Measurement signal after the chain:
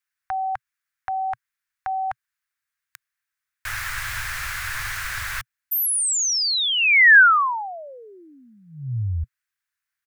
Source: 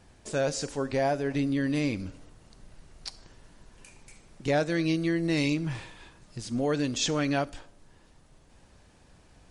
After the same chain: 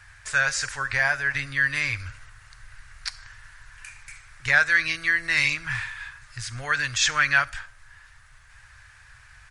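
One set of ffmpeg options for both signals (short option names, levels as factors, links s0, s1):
-af "firequalizer=gain_entry='entry(120,0);entry(180,-28);entry(1100,4);entry(1600,15);entry(3000,2)':delay=0.05:min_phase=1,volume=1.68"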